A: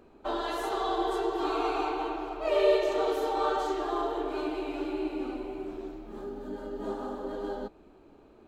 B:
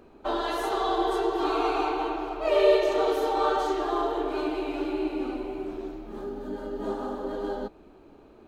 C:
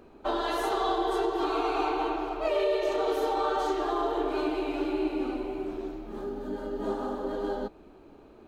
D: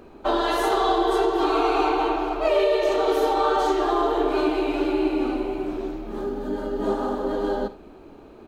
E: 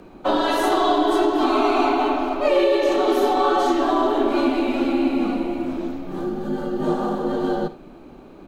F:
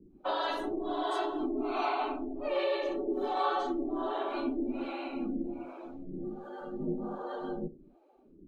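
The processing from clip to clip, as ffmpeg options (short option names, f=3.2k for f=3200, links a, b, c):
-af "bandreject=f=7.5k:w=15,volume=3.5dB"
-af "alimiter=limit=-18dB:level=0:latency=1:release=269"
-af "aecho=1:1:53|79:0.188|0.133,volume=6.5dB"
-af "afreqshift=-42,volume=2.5dB"
-filter_complex "[0:a]acrossover=split=440[a][b];[a]aeval=exprs='val(0)*(1-1/2+1/2*cos(2*PI*1.3*n/s))':c=same[c];[b]aeval=exprs='val(0)*(1-1/2-1/2*cos(2*PI*1.3*n/s))':c=same[d];[c][d]amix=inputs=2:normalize=0,afftdn=nr=16:nf=-44,volume=-8.5dB"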